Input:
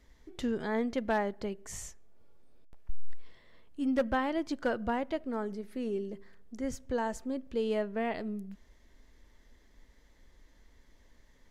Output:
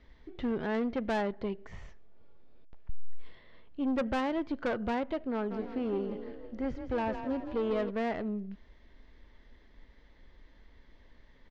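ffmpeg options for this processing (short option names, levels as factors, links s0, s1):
-filter_complex "[0:a]acrossover=split=2700[s0][s1];[s1]acompressor=threshold=0.00141:ratio=4:attack=1:release=60[s2];[s0][s2]amix=inputs=2:normalize=0,lowpass=f=4200:w=0.5412,lowpass=f=4200:w=1.3066,aeval=exprs='(tanh(31.6*val(0)+0.3)-tanh(0.3))/31.6':c=same,asplit=3[s3][s4][s5];[s3]afade=t=out:st=5.5:d=0.02[s6];[s4]asplit=7[s7][s8][s9][s10][s11][s12][s13];[s8]adelay=163,afreqshift=32,volume=0.355[s14];[s9]adelay=326,afreqshift=64,volume=0.191[s15];[s10]adelay=489,afreqshift=96,volume=0.104[s16];[s11]adelay=652,afreqshift=128,volume=0.0556[s17];[s12]adelay=815,afreqshift=160,volume=0.0302[s18];[s13]adelay=978,afreqshift=192,volume=0.0162[s19];[s7][s14][s15][s16][s17][s18][s19]amix=inputs=7:normalize=0,afade=t=in:st=5.5:d=0.02,afade=t=out:st=7.89:d=0.02[s20];[s5]afade=t=in:st=7.89:d=0.02[s21];[s6][s20][s21]amix=inputs=3:normalize=0,volume=1.58"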